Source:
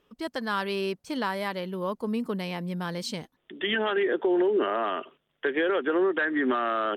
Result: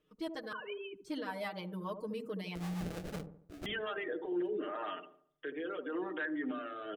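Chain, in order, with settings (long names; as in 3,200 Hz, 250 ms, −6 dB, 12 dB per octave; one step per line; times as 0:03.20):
0:00.52–0:00.96: three sine waves on the formant tracks
reverb reduction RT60 0.74 s
comb filter 6.5 ms, depth 96%
brickwall limiter −21 dBFS, peak gain reduction 9 dB
0:02.55–0:03.66: sample-rate reduction 1,000 Hz, jitter 20%
rotating-speaker cabinet horn 6.7 Hz, later 0.85 Hz, at 0:02.83
delay with a low-pass on its return 73 ms, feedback 42%, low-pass 730 Hz, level −6.5 dB
level −8 dB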